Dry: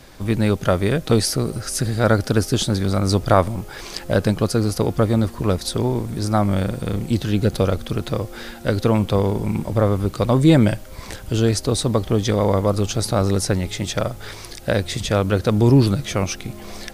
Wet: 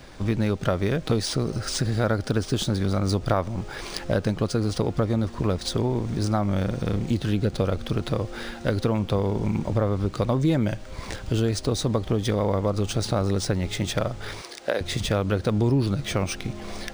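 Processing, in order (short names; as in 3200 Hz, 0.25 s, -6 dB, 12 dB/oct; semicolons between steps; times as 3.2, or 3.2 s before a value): 14.41–14.81 Chebyshev high-pass 430 Hz, order 2; compressor 3:1, threshold -21 dBFS, peak gain reduction 9.5 dB; decimation joined by straight lines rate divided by 3×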